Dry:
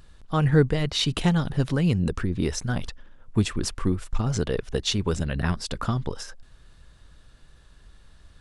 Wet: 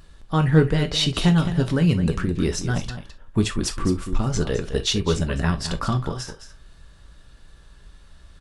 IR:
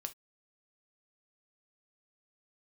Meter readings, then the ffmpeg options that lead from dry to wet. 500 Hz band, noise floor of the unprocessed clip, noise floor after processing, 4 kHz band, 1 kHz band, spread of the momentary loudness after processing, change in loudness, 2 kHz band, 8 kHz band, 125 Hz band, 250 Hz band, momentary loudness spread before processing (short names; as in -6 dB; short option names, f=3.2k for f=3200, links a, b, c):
+2.5 dB, -53 dBFS, -49 dBFS, +3.5 dB, +3.0 dB, 9 LU, +3.0 dB, +3.0 dB, +3.5 dB, +3.0 dB, +3.5 dB, 8 LU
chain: -filter_complex "[0:a]acontrast=36,aecho=1:1:212:0.282[a];[1:a]atrim=start_sample=2205[b];[a][b]afir=irnorm=-1:irlink=0"